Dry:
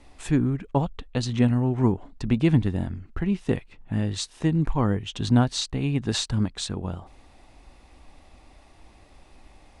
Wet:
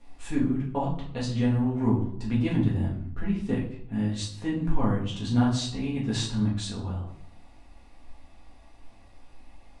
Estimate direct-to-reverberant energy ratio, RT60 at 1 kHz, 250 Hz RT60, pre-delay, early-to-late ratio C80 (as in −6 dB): −6.0 dB, 0.65 s, 0.90 s, 4 ms, 10.5 dB